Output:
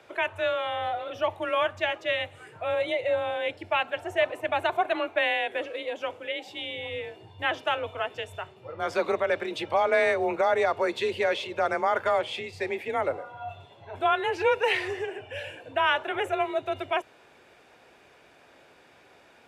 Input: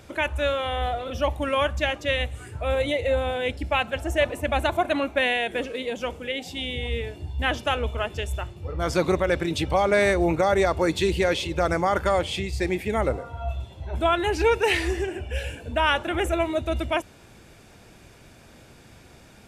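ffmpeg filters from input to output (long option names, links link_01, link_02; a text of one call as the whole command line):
ffmpeg -i in.wav -filter_complex "[0:a]acrossover=split=320 3700:gain=0.126 1 0.251[link_01][link_02][link_03];[link_01][link_02][link_03]amix=inputs=3:normalize=0,afreqshift=29,volume=-1.5dB" out.wav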